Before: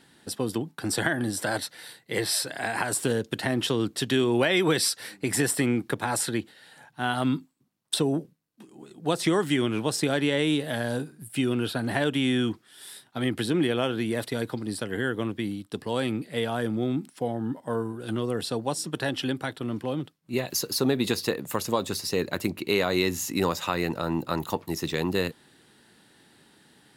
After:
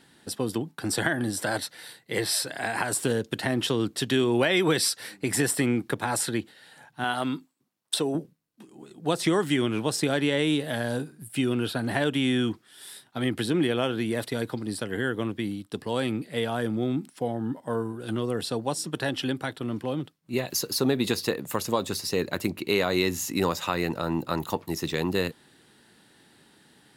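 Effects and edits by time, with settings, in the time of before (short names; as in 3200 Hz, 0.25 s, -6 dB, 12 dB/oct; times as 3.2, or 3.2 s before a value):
7.04–8.15 tone controls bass -9 dB, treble 0 dB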